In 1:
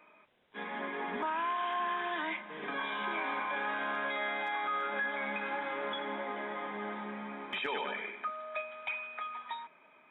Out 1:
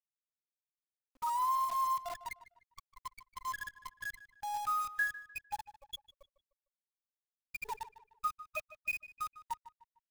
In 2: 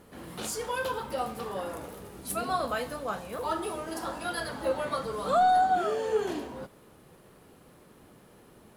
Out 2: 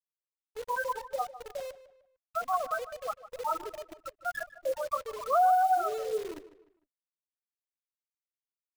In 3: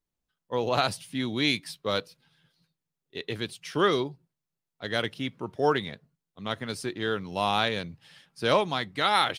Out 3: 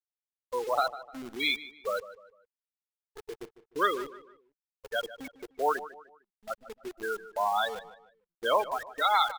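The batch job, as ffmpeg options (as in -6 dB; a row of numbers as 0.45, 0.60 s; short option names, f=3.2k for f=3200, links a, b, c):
-filter_complex "[0:a]afftfilt=real='re*gte(hypot(re,im),0.141)':imag='im*gte(hypot(re,im),0.141)':win_size=1024:overlap=0.75,highpass=660,equalizer=f=4.3k:t=o:w=0.23:g=-5,asplit=2[a][b];[b]acompressor=threshold=-36dB:ratio=10,volume=-1.5dB[c];[a][c]amix=inputs=2:normalize=0,acrusher=bits=8:dc=4:mix=0:aa=0.000001,asplit=2[d][e];[e]adelay=151,lowpass=f=3.3k:p=1,volume=-15dB,asplit=2[f][g];[g]adelay=151,lowpass=f=3.3k:p=1,volume=0.37,asplit=2[h][i];[i]adelay=151,lowpass=f=3.3k:p=1,volume=0.37[j];[d][f][h][j]amix=inputs=4:normalize=0"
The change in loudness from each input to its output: -2.0, -1.0, -3.0 LU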